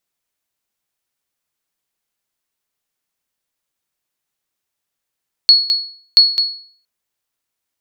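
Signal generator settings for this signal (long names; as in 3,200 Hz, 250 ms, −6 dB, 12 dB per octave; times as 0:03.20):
ping with an echo 4,360 Hz, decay 0.49 s, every 0.68 s, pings 2, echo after 0.21 s, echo −7 dB −1 dBFS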